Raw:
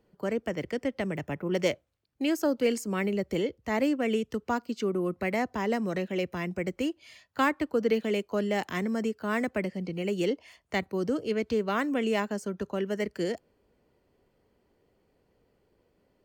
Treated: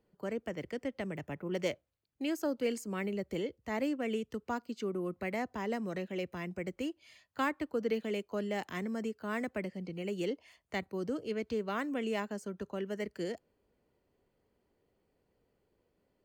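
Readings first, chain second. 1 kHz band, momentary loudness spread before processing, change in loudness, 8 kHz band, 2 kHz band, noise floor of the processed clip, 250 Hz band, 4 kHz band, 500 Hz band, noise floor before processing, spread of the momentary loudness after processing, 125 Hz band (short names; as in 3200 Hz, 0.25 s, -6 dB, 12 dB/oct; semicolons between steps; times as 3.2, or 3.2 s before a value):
-7.0 dB, 6 LU, -7.0 dB, -7.0 dB, -7.0 dB, -78 dBFS, -7.0 dB, -7.0 dB, -7.0 dB, -71 dBFS, 6 LU, -7.0 dB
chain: notch 5500 Hz, Q 20; gain -7 dB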